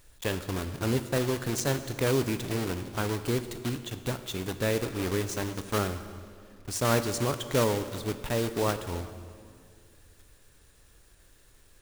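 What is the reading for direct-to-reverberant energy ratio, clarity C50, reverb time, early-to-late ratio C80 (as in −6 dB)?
9.5 dB, 11.0 dB, 2.2 s, 12.0 dB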